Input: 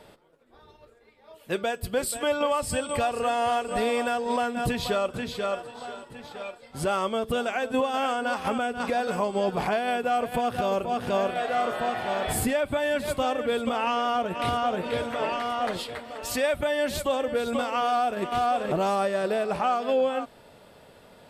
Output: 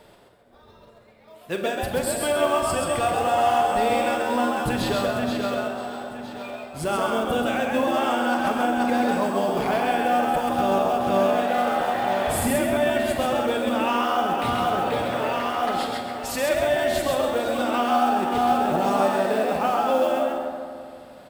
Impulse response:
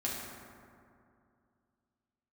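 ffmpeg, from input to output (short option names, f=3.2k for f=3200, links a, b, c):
-filter_complex "[0:a]acrusher=bits=6:mode=log:mix=0:aa=0.000001,asplit=5[a][b][c][d][e];[b]adelay=133,afreqshift=77,volume=-3.5dB[f];[c]adelay=266,afreqshift=154,volume=-13.1dB[g];[d]adelay=399,afreqshift=231,volume=-22.8dB[h];[e]adelay=532,afreqshift=308,volume=-32.4dB[i];[a][f][g][h][i]amix=inputs=5:normalize=0,asplit=2[j][k];[1:a]atrim=start_sample=2205,adelay=41[l];[k][l]afir=irnorm=-1:irlink=0,volume=-9dB[m];[j][m]amix=inputs=2:normalize=0"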